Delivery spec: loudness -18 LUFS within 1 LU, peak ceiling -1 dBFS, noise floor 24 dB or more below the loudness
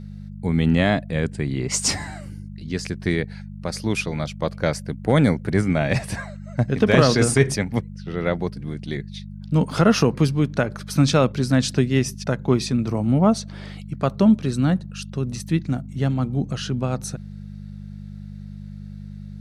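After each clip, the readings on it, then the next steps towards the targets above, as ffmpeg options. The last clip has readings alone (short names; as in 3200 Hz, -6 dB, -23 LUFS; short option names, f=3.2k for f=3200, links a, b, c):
hum 50 Hz; harmonics up to 200 Hz; hum level -33 dBFS; loudness -22.0 LUFS; peak -1.0 dBFS; loudness target -18.0 LUFS
-> -af "bandreject=f=50:t=h:w=4,bandreject=f=100:t=h:w=4,bandreject=f=150:t=h:w=4,bandreject=f=200:t=h:w=4"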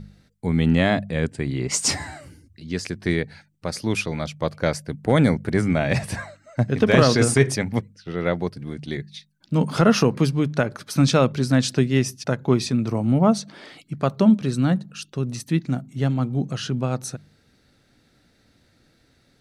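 hum none; loudness -22.0 LUFS; peak -1.0 dBFS; loudness target -18.0 LUFS
-> -af "volume=4dB,alimiter=limit=-1dB:level=0:latency=1"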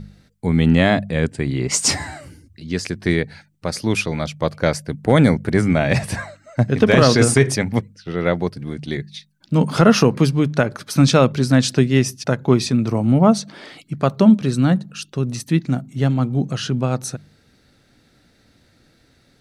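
loudness -18.5 LUFS; peak -1.0 dBFS; noise floor -58 dBFS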